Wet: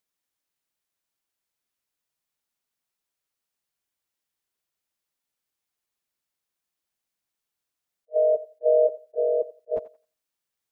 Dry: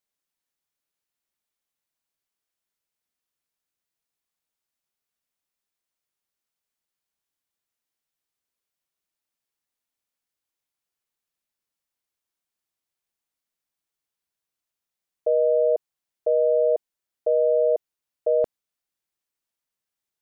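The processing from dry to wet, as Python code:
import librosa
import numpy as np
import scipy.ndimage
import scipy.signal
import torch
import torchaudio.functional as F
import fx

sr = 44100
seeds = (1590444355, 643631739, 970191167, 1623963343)

y = fx.stretch_vocoder_free(x, sr, factor=0.53)
y = fx.echo_thinned(y, sr, ms=87, feedback_pct=27, hz=580.0, wet_db=-14.5)
y = fx.attack_slew(y, sr, db_per_s=560.0)
y = y * 10.0 ** (4.5 / 20.0)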